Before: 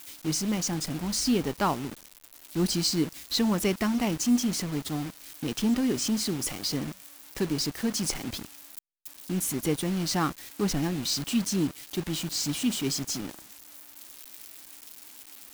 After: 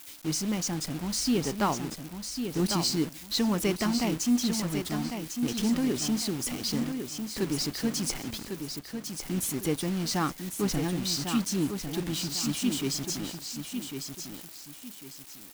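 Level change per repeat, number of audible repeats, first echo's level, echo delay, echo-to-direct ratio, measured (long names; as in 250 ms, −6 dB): −10.5 dB, 2, −7.0 dB, 1,100 ms, −6.5 dB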